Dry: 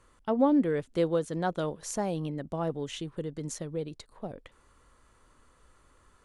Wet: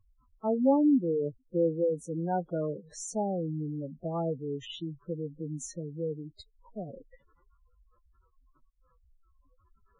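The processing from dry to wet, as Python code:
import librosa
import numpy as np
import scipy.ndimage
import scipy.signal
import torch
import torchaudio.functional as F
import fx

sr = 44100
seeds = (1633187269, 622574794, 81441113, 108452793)

y = fx.spec_gate(x, sr, threshold_db=-10, keep='strong')
y = fx.stretch_vocoder(y, sr, factor=1.6)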